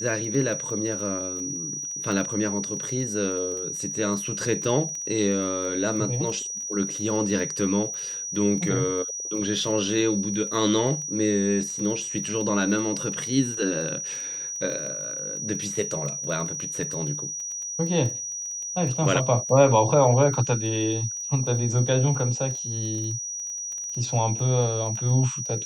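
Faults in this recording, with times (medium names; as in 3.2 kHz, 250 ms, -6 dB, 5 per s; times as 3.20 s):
crackle 12 per s -31 dBFS
whine 5.8 kHz -30 dBFS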